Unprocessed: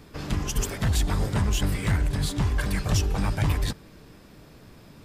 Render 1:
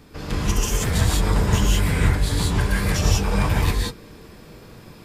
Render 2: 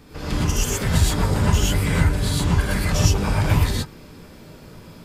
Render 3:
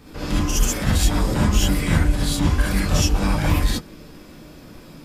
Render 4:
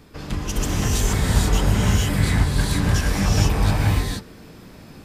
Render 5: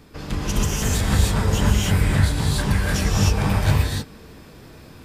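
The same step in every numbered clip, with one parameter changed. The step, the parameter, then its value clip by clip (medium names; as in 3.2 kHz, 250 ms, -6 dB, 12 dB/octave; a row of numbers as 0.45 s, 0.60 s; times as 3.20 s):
gated-style reverb, gate: 210 ms, 140 ms, 90 ms, 500 ms, 330 ms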